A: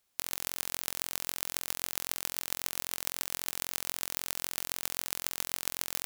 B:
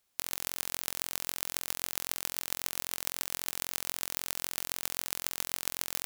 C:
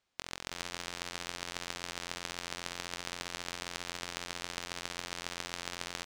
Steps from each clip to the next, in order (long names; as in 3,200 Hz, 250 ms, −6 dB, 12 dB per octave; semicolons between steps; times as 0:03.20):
no processing that can be heard
high-frequency loss of the air 110 metres; single-tap delay 331 ms −4.5 dB; level +1 dB